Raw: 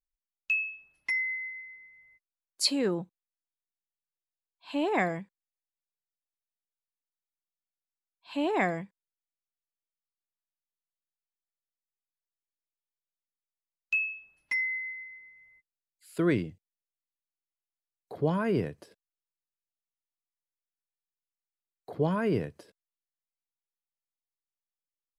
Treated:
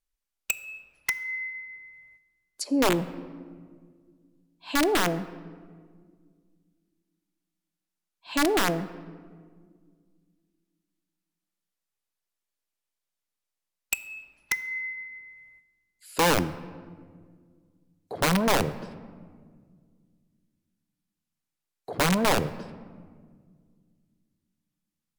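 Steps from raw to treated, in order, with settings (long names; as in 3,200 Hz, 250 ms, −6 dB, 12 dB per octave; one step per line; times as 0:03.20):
treble cut that deepens with the level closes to 660 Hz, closed at −25.5 dBFS
wrap-around overflow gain 22.5 dB
on a send: convolution reverb RT60 1.8 s, pre-delay 3 ms, DRR 13.5 dB
on the sum: level +6.5 dB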